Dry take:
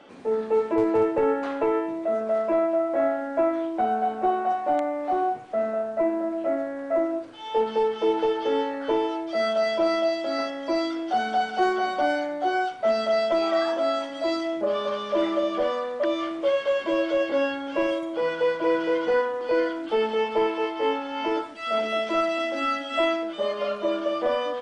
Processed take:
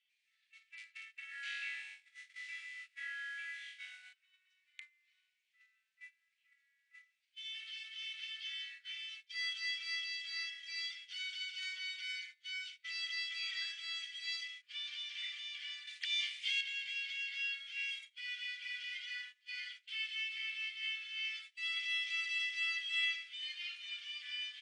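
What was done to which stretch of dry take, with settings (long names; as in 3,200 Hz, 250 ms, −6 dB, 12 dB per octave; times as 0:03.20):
0:01.29–0:04.13: flutter between parallel walls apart 3.7 metres, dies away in 1.3 s
0:15.87–0:16.61: high-shelf EQ 2,200 Hz +10 dB
whole clip: Butterworth high-pass 2,100 Hz 48 dB per octave; noise gate −49 dBFS, range −20 dB; high-shelf EQ 4,600 Hz −9 dB; level +1 dB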